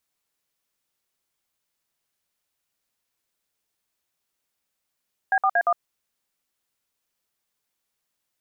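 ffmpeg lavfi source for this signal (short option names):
-f lavfi -i "aevalsrc='0.106*clip(min(mod(t,0.116),0.06-mod(t,0.116))/0.002,0,1)*(eq(floor(t/0.116),0)*(sin(2*PI*770*mod(t,0.116))+sin(2*PI*1633*mod(t,0.116)))+eq(floor(t/0.116),1)*(sin(2*PI*770*mod(t,0.116))+sin(2*PI*1209*mod(t,0.116)))+eq(floor(t/0.116),2)*(sin(2*PI*697*mod(t,0.116))+sin(2*PI*1633*mod(t,0.116)))+eq(floor(t/0.116),3)*(sin(2*PI*697*mod(t,0.116))+sin(2*PI*1209*mod(t,0.116))))':d=0.464:s=44100"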